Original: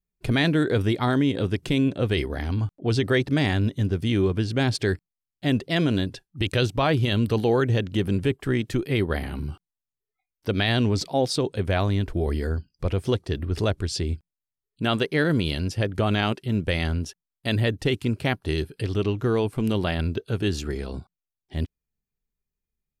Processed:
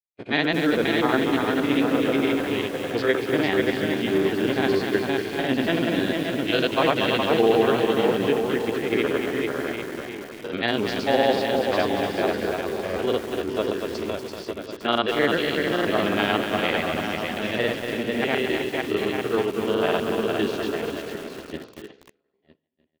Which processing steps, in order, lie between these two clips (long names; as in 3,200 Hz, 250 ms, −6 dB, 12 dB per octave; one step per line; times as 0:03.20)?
spectrum averaged block by block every 50 ms
low-pass filter 3,300 Hz 12 dB per octave
pitch vibrato 2.9 Hz 33 cents
high-pass filter 330 Hz 12 dB per octave
bouncing-ball delay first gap 460 ms, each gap 0.8×, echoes 5
granular cloud 100 ms, grains 20 per second, pitch spread up and down by 0 semitones
downward expander −37 dBFS
coupled-rooms reverb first 0.52 s, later 1.5 s, DRR 19.5 dB
feedback echo at a low word length 237 ms, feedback 35%, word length 7 bits, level −6 dB
level +5 dB